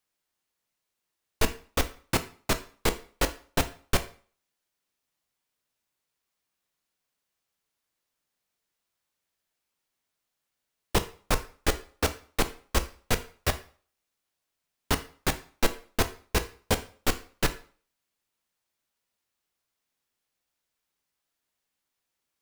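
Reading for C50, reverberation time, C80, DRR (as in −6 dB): 15.0 dB, 0.45 s, 19.5 dB, 9.0 dB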